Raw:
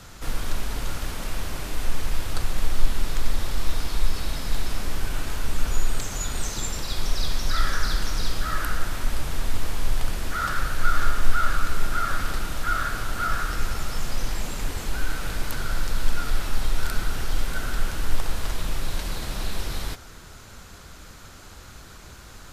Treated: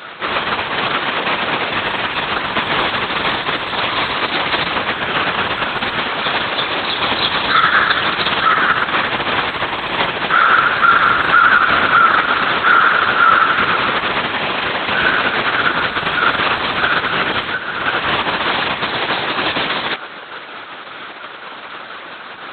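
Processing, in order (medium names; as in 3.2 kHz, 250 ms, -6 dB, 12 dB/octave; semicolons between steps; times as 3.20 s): LPC vocoder at 8 kHz whisper; high-pass 500 Hz 12 dB/octave; 17.42–17.86 s: compression 10:1, threshold -36 dBFS, peak gain reduction 11 dB; loudness maximiser +19 dB; trim -1 dB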